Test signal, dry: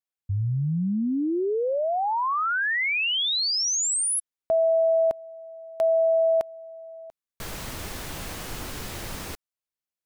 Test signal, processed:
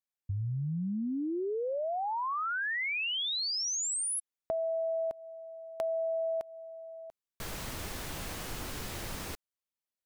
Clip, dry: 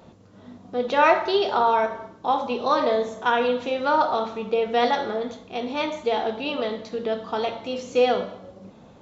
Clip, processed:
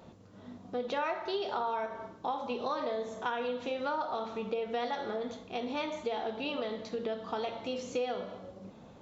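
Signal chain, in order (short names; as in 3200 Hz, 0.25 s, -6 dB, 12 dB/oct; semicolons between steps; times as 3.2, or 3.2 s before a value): compressor 4:1, threshold -28 dBFS; gain -4 dB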